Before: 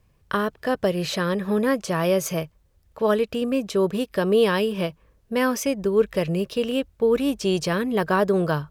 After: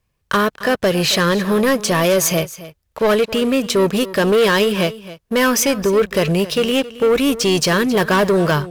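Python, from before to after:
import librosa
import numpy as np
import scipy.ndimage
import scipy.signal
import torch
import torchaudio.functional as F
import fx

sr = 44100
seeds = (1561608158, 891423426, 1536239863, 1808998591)

y = fx.tilt_shelf(x, sr, db=-3.5, hz=970.0)
y = fx.leveller(y, sr, passes=3)
y = y + 10.0 ** (-16.5 / 20.0) * np.pad(y, (int(269 * sr / 1000.0), 0))[:len(y)]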